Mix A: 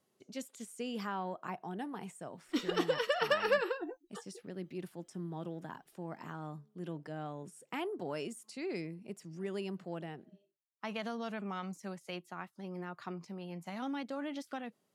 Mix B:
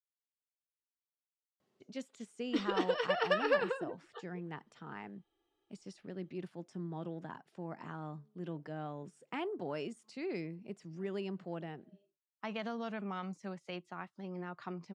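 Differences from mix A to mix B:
speech: entry +1.60 s; master: add distance through air 100 m

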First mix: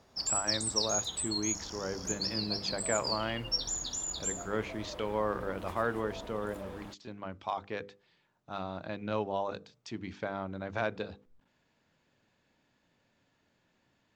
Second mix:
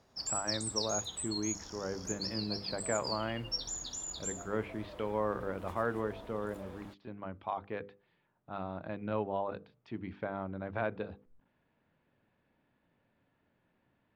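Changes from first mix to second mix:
speech: add distance through air 430 m; background -4.5 dB

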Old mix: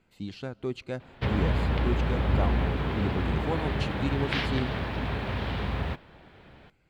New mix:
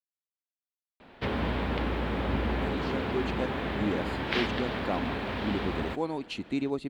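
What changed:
speech: entry +2.50 s; master: add resonant low shelf 180 Hz -6.5 dB, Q 1.5

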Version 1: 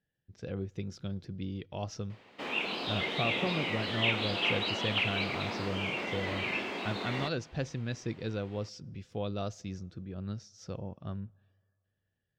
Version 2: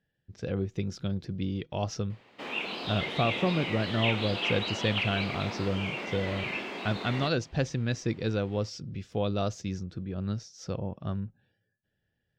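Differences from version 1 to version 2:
speech +6.5 dB; reverb: off

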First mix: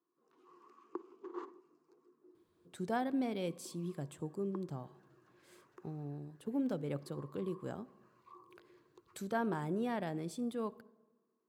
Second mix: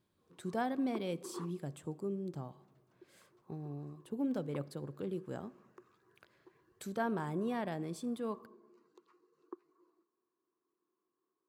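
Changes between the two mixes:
speech: entry -2.35 s; background: send -7.5 dB

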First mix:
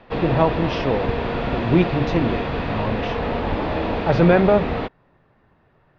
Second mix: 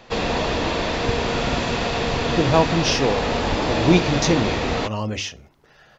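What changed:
speech: entry +2.15 s; master: remove distance through air 390 m

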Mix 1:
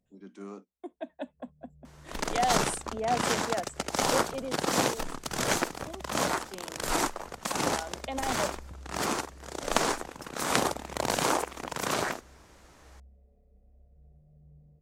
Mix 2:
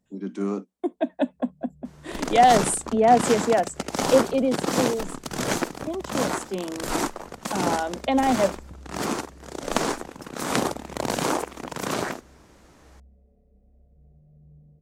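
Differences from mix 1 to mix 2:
speech +10.5 dB; master: add peaking EQ 230 Hz +6.5 dB 2.1 oct

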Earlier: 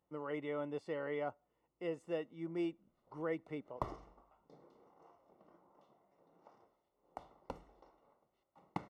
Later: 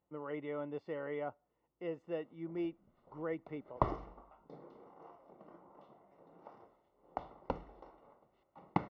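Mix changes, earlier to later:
background +9.0 dB; master: add distance through air 220 m

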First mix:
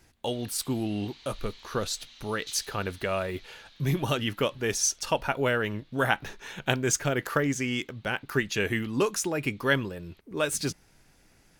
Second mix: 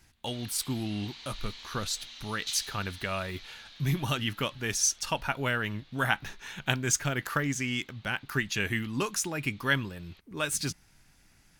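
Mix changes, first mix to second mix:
speech: add peaking EQ 470 Hz -9.5 dB 1.3 oct; background +5.5 dB

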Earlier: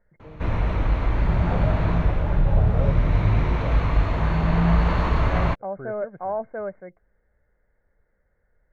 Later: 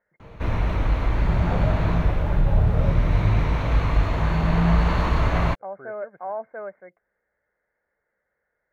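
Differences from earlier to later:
speech: add high-pass 710 Hz 6 dB/octave; master: add treble shelf 6.8 kHz +11.5 dB

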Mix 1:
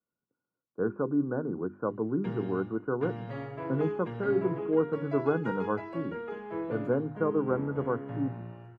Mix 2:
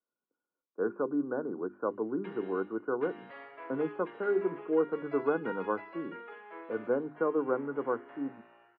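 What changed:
background: add band-pass filter 2.4 kHz, Q 0.66; master: add three-band isolator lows -21 dB, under 250 Hz, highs -17 dB, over 3.7 kHz

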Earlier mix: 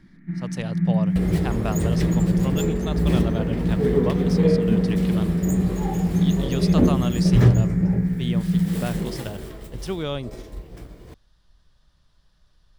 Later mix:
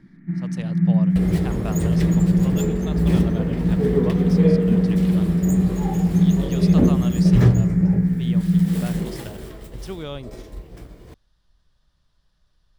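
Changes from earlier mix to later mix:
speech -4.5 dB; first sound: add tilt shelf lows +3.5 dB, about 1.5 kHz

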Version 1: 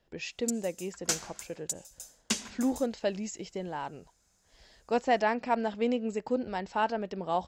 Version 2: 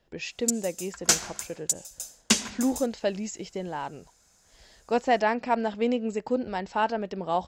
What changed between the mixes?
speech +3.0 dB; background +8.5 dB

